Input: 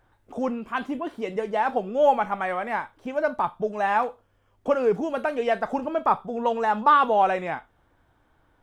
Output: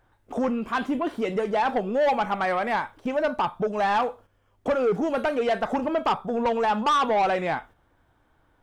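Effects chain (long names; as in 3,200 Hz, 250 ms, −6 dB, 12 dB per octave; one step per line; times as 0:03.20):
noise gate −49 dBFS, range −7 dB
in parallel at +1 dB: downward compressor, threshold −28 dBFS, peak gain reduction 14 dB
on the sum: soft clipping −17.5 dBFS, distortion −11 dB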